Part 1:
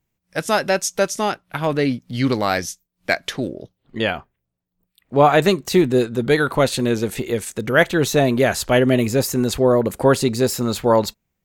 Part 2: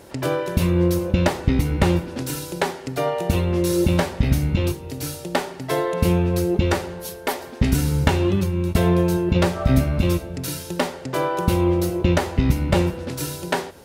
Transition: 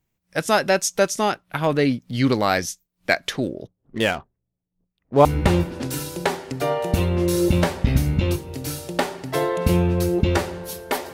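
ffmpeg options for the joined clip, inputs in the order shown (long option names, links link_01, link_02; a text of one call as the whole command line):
ffmpeg -i cue0.wav -i cue1.wav -filter_complex "[0:a]asettb=1/sr,asplit=3[link_01][link_02][link_03];[link_01]atrim=end=3.674[link_04];[link_02]atrim=start=3.67:end=5.25,asetpts=PTS-STARTPTS,afade=type=in:duration=0.004:curve=qsin,afade=type=out:start_time=1.576:duration=0.004:curve=qsin,adynamicsmooth=sensitivity=8:basefreq=780[link_05];[link_03]atrim=start=5.246[link_06];[link_04][link_05]acrossfade=duration=0.004:curve1=hsin:curve2=qsin[link_07];[link_07][link_06]acrossfade=duration=0.004:curve1=qsin:curve2=hsin,apad=whole_dur=11.13,atrim=end=11.13,atrim=end=5.252[link_08];[1:a]atrim=start=1.608:end=7.49[link_09];[link_08][link_09]acrossfade=duration=0.004:curve1=hsin:curve2=hsin" out.wav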